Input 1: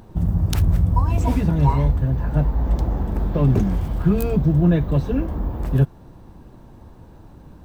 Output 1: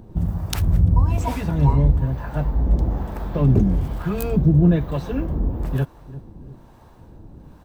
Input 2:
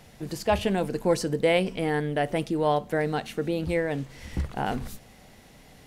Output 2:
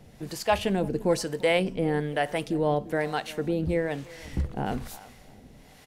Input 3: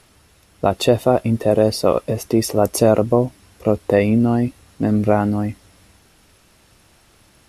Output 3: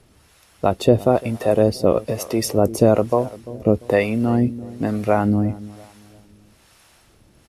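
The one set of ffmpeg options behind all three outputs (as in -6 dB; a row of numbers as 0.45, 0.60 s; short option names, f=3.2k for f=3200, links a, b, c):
-filter_complex "[0:a]asplit=2[a][b];[b]adelay=344,lowpass=f=1.4k:p=1,volume=-18dB,asplit=2[c][d];[d]adelay=344,lowpass=f=1.4k:p=1,volume=0.39,asplit=2[e][f];[f]adelay=344,lowpass=f=1.4k:p=1,volume=0.39[g];[a][c][e][g]amix=inputs=4:normalize=0,acrossover=split=570[h][i];[h]aeval=exprs='val(0)*(1-0.7/2+0.7/2*cos(2*PI*1.1*n/s))':c=same[j];[i]aeval=exprs='val(0)*(1-0.7/2-0.7/2*cos(2*PI*1.1*n/s))':c=same[k];[j][k]amix=inputs=2:normalize=0,volume=2.5dB"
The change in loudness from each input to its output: -0.5, -0.5, -1.5 LU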